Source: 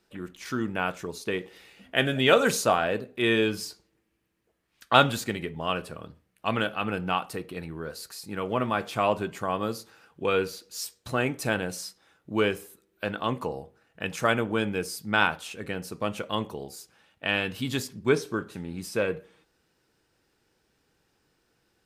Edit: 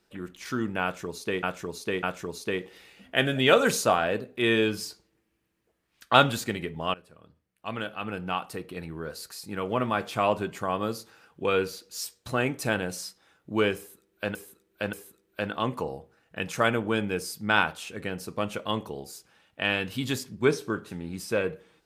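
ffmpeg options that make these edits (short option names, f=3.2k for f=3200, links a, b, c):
-filter_complex "[0:a]asplit=6[a][b][c][d][e][f];[a]atrim=end=1.432[g];[b]atrim=start=0.828:end=1.432[h];[c]atrim=start=0.828:end=5.74,asetpts=PTS-STARTPTS,afade=t=out:st=4.908:d=0.004:c=hsin:silence=0.105925[i];[d]atrim=start=5.74:end=13.152,asetpts=PTS-STARTPTS,afade=t=in:d=2.05:silence=0.105925[j];[e]atrim=start=12.568:end=13.152[k];[f]atrim=start=12.568[l];[g][h]acrossfade=d=0.004:c1=hsin:c2=hsin[m];[i][j]concat=n=2:v=0:a=1[n];[m][n]acrossfade=d=0.004:c1=hsin:c2=hsin[o];[o][k]acrossfade=d=0.004:c1=hsin:c2=hsin[p];[p][l]acrossfade=d=0.004:c1=hsin:c2=hsin"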